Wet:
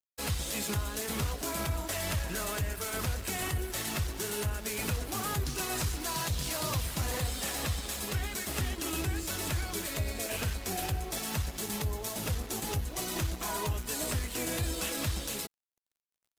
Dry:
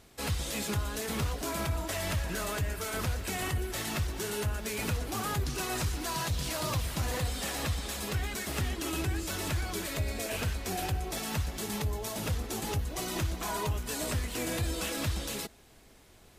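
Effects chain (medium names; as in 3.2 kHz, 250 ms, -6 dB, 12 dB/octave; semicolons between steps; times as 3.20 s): treble shelf 5.8 kHz +5 dB; crossover distortion -47.5 dBFS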